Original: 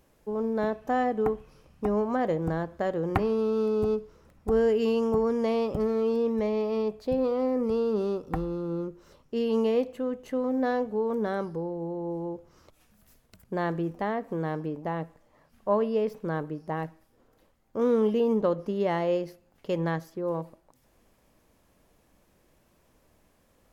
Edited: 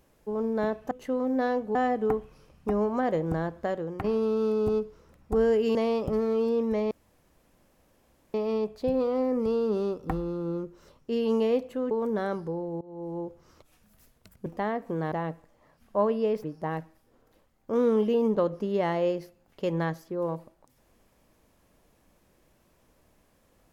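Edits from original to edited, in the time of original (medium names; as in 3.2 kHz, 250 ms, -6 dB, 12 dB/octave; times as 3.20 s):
2.78–3.20 s: fade out, to -11.5 dB
4.91–5.42 s: delete
6.58 s: insert room tone 1.43 s
10.15–10.99 s: move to 0.91 s
11.89–12.27 s: fade in linear, from -22.5 dB
13.54–13.88 s: delete
14.54–14.84 s: delete
16.16–16.50 s: delete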